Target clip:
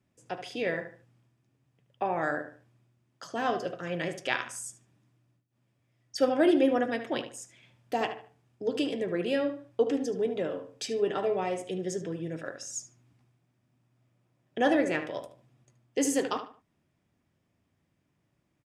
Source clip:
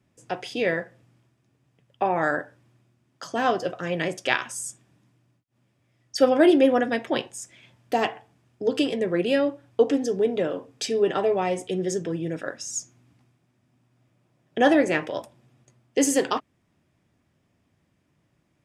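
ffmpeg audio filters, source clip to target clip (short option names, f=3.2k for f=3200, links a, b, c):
-filter_complex "[0:a]asplit=2[a][b];[b]adelay=74,lowpass=f=3.4k:p=1,volume=-10dB,asplit=2[c][d];[d]adelay=74,lowpass=f=3.4k:p=1,volume=0.31,asplit=2[e][f];[f]adelay=74,lowpass=f=3.4k:p=1,volume=0.31[g];[a][c][e][g]amix=inputs=4:normalize=0,volume=-6.5dB"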